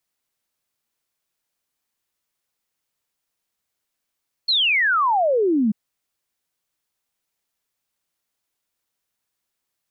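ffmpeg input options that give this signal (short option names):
-f lavfi -i "aevalsrc='0.168*clip(min(t,1.24-t)/0.01,0,1)*sin(2*PI*4400*1.24/log(200/4400)*(exp(log(200/4400)*t/1.24)-1))':d=1.24:s=44100"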